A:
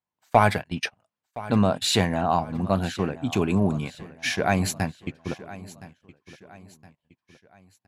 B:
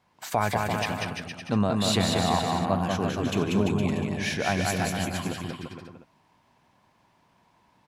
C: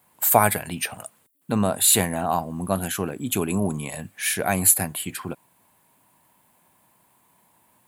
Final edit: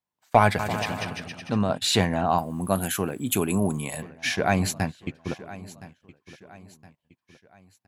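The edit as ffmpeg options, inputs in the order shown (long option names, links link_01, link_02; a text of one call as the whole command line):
ffmpeg -i take0.wav -i take1.wav -i take2.wav -filter_complex "[0:a]asplit=3[link_01][link_02][link_03];[link_01]atrim=end=0.592[link_04];[1:a]atrim=start=0.588:end=1.702[link_05];[link_02]atrim=start=1.698:end=2.382[link_06];[2:a]atrim=start=2.378:end=4.022[link_07];[link_03]atrim=start=4.018[link_08];[link_04][link_05]acrossfade=duration=0.004:curve1=hsin:curve2=hsin[link_09];[link_09][link_06]acrossfade=duration=0.004:curve1=hsin:curve2=hsin[link_10];[link_10][link_07]acrossfade=duration=0.004:curve1=hsin:curve2=hsin[link_11];[link_11][link_08]acrossfade=duration=0.004:curve1=hsin:curve2=hsin" out.wav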